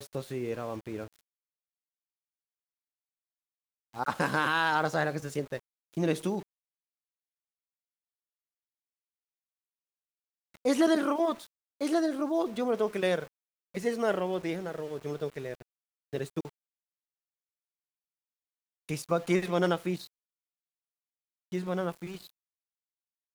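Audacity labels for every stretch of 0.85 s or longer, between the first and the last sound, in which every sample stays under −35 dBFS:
1.050000	3.960000	silence
6.400000	10.650000	silence
16.470000	18.890000	silence
20.010000	21.530000	silence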